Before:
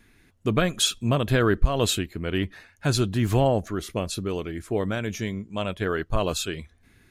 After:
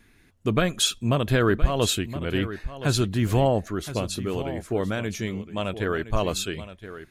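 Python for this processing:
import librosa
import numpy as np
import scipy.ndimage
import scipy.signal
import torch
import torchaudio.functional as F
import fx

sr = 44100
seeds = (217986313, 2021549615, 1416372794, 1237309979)

y = x + 10.0 ** (-13.0 / 20.0) * np.pad(x, (int(1019 * sr / 1000.0), 0))[:len(x)]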